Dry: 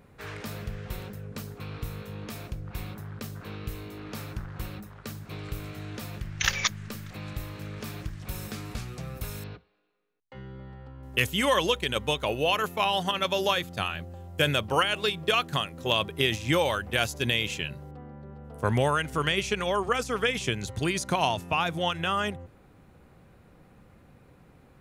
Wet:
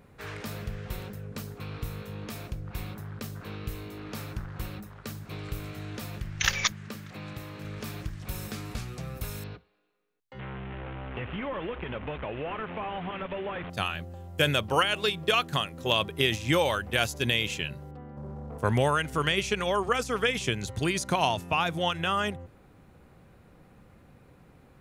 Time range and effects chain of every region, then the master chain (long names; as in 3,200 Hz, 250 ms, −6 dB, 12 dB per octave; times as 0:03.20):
0:06.72–0:07.65: high-pass filter 120 Hz + high-shelf EQ 5,900 Hz −6.5 dB
0:10.39–0:13.70: linear delta modulator 16 kbit/s, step −32 dBFS + downward compressor 4 to 1, threshold −31 dBFS
0:18.17–0:18.58: inverse Chebyshev low-pass filter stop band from 6,300 Hz, stop band 80 dB + leveller curve on the samples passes 2
whole clip: no processing